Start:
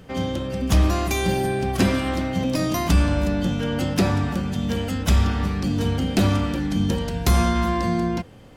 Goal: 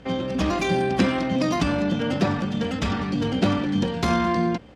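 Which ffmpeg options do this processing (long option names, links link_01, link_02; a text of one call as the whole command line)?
ffmpeg -i in.wav -af "highpass=150,lowpass=5100,aeval=exprs='val(0)+0.002*(sin(2*PI*60*n/s)+sin(2*PI*2*60*n/s)/2+sin(2*PI*3*60*n/s)/3+sin(2*PI*4*60*n/s)/4+sin(2*PI*5*60*n/s)/5)':channel_layout=same,atempo=1.8,volume=1.5dB" out.wav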